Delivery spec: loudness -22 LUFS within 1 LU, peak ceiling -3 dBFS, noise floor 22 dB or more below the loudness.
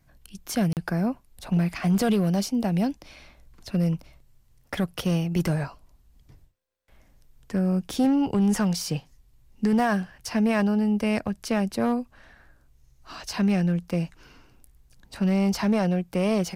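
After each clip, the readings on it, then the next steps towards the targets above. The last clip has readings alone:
clipped 0.8%; flat tops at -16.0 dBFS; dropouts 1; longest dropout 38 ms; loudness -25.5 LUFS; peak -16.0 dBFS; loudness target -22.0 LUFS
-> clip repair -16 dBFS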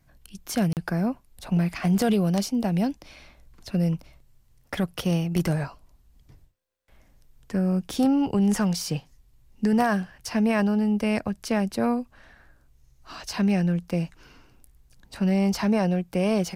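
clipped 0.0%; dropouts 1; longest dropout 38 ms
-> interpolate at 0.73, 38 ms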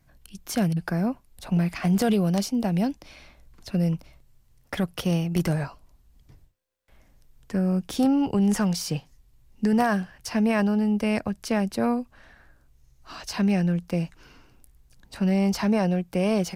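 dropouts 0; loudness -25.0 LUFS; peak -7.0 dBFS; loudness target -22.0 LUFS
-> gain +3 dB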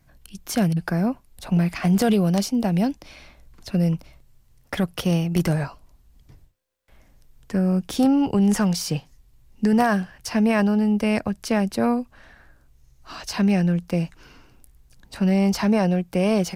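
loudness -22.0 LUFS; peak -4.0 dBFS; noise floor -58 dBFS

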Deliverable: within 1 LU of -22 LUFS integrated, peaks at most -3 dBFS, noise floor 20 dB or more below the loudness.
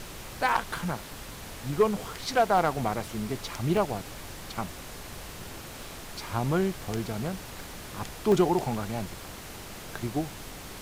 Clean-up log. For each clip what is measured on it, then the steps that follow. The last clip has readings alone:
dropouts 6; longest dropout 1.5 ms; noise floor -43 dBFS; noise floor target -50 dBFS; loudness -29.5 LUFS; peak -13.0 dBFS; loudness target -22.0 LUFS
-> interpolate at 0.49/1.77/2.58/3.77/6.97/8.32, 1.5 ms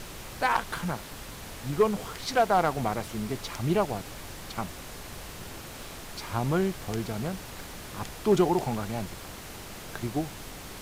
dropouts 0; noise floor -43 dBFS; noise floor target -50 dBFS
-> noise print and reduce 7 dB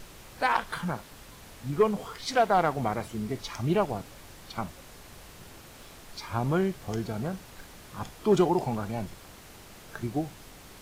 noise floor -49 dBFS; noise floor target -50 dBFS
-> noise print and reduce 6 dB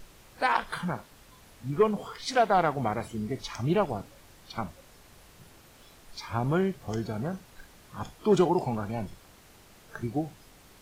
noise floor -55 dBFS; loudness -29.5 LUFS; peak -13.0 dBFS; loudness target -22.0 LUFS
-> gain +7.5 dB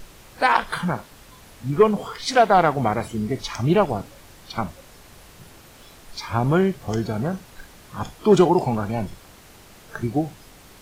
loudness -22.0 LUFS; peak -5.5 dBFS; noise floor -48 dBFS

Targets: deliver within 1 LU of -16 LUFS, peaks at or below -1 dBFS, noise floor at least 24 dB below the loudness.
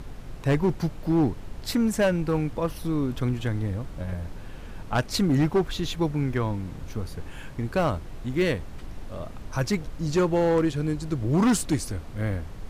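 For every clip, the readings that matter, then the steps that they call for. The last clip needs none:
clipped 1.8%; flat tops at -16.5 dBFS; noise floor -40 dBFS; noise floor target -51 dBFS; loudness -26.5 LUFS; peak -16.5 dBFS; loudness target -16.0 LUFS
-> clip repair -16.5 dBFS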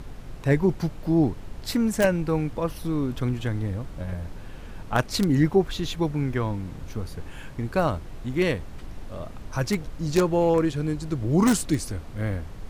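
clipped 0.0%; noise floor -40 dBFS; noise floor target -50 dBFS
-> noise print and reduce 10 dB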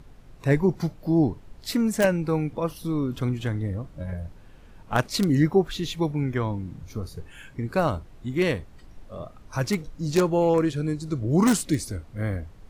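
noise floor -48 dBFS; noise floor target -50 dBFS
-> noise print and reduce 6 dB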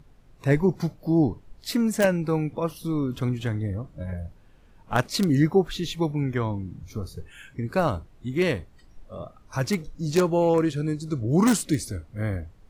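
noise floor -53 dBFS; loudness -25.5 LUFS; peak -7.5 dBFS; loudness target -16.0 LUFS
-> gain +9.5 dB; limiter -1 dBFS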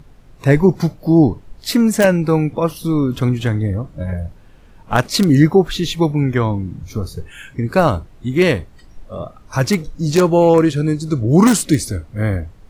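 loudness -16.5 LUFS; peak -1.0 dBFS; noise floor -44 dBFS

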